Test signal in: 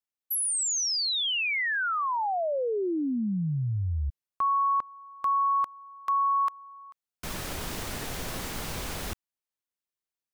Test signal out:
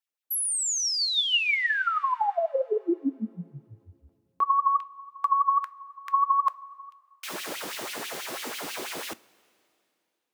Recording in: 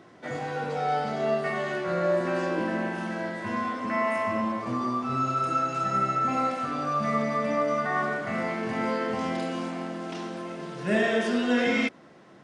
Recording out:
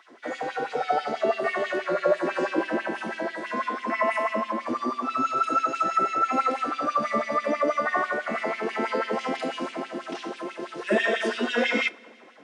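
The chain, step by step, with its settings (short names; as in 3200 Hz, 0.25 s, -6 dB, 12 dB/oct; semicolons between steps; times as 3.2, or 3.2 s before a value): LFO high-pass sine 6.1 Hz 270–3000 Hz; two-slope reverb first 0.24 s, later 2.7 s, from -18 dB, DRR 15 dB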